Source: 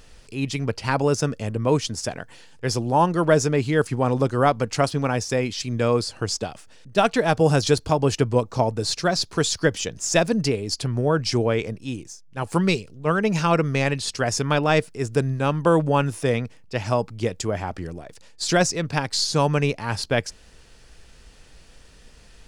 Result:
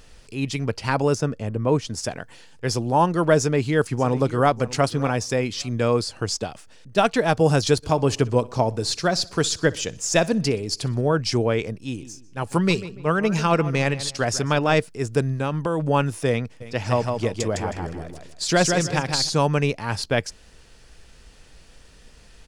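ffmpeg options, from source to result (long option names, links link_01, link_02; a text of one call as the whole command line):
ffmpeg -i in.wav -filter_complex "[0:a]asettb=1/sr,asplit=3[link_01][link_02][link_03];[link_01]atrim=end=1.184[link_04];[link_02]atrim=start=1.18:end=1.9,asetpts=PTS-STARTPTS,afade=type=in:duration=0.004:curve=qsin,afade=type=out:start_time=0.716:duration=0.004:curve=qsin,highshelf=frequency=2400:gain=-8.5[link_05];[link_03]atrim=start=1.896[link_06];[link_04][link_05]acrossfade=duration=0.004:curve1=hsin:curve2=qsin[link_07];[link_07][link_06]acrossfade=duration=0.004:curve1=qsin:curve2=hsin,asplit=2[link_08][link_09];[link_09]afade=type=in:start_time=3.38:duration=0.01,afade=type=out:start_time=4.56:duration=0.01,aecho=0:1:590|1180:0.149624|0.0224435[link_10];[link_08][link_10]amix=inputs=2:normalize=0,asplit=3[link_11][link_12][link_13];[link_11]afade=type=out:start_time=7.82:duration=0.02[link_14];[link_12]aecho=1:1:62|124|186|248:0.0794|0.0405|0.0207|0.0105,afade=type=in:start_time=7.82:duration=0.02,afade=type=out:start_time=11.15:duration=0.02[link_15];[link_13]afade=type=in:start_time=11.15:duration=0.02[link_16];[link_14][link_15][link_16]amix=inputs=3:normalize=0,asettb=1/sr,asplit=3[link_17][link_18][link_19];[link_17]atrim=end=11.824[link_20];[link_18]atrim=start=11.82:end=14.75,asetpts=PTS-STARTPTS,afade=type=in:duration=0.004:curve=qsin,afade=type=out:start_time=2.926:duration=0.004:curve=qsin,asplit=2[link_21][link_22];[link_22]adelay=146,lowpass=frequency=2400:poles=1,volume=-14dB,asplit=2[link_23][link_24];[link_24]adelay=146,lowpass=frequency=2400:poles=1,volume=0.33,asplit=2[link_25][link_26];[link_26]adelay=146,lowpass=frequency=2400:poles=1,volume=0.33[link_27];[link_21][link_23][link_25][link_27]amix=inputs=4:normalize=0,atrim=end_sample=129213[link_28];[link_19]atrim=start=14.746[link_29];[link_20][link_28]acrossfade=duration=0.004:curve1=hsin:curve2=qsin[link_30];[link_30][link_29]acrossfade=duration=0.004:curve1=qsin:curve2=hsin,asettb=1/sr,asplit=3[link_31][link_32][link_33];[link_31]atrim=end=15.394[link_34];[link_32]atrim=start=15.39:end=15.86,asetpts=PTS-STARTPTS,afade=type=in:duration=0.004:curve=qsin,afade=type=out:start_time=0.466:duration=0.004:curve=qsin,acompressor=threshold=-19dB:ratio=10:attack=3.2:release=140:knee=1:detection=peak[link_35];[link_33]atrim=start=15.856[link_36];[link_34][link_35]acrossfade=duration=0.004:curve1=hsin:curve2=qsin[link_37];[link_37][link_36]acrossfade=duration=0.004:curve1=qsin:curve2=hsin,asplit=3[link_38][link_39][link_40];[link_38]afade=type=out:start_time=16.6:duration=0.02[link_41];[link_39]aecho=1:1:158|316|474:0.596|0.149|0.0372,afade=type=in:start_time=16.6:duration=0.02,afade=type=out:start_time=19.28:duration=0.02[link_42];[link_40]afade=type=in:start_time=19.28:duration=0.02[link_43];[link_41][link_42][link_43]amix=inputs=3:normalize=0" out.wav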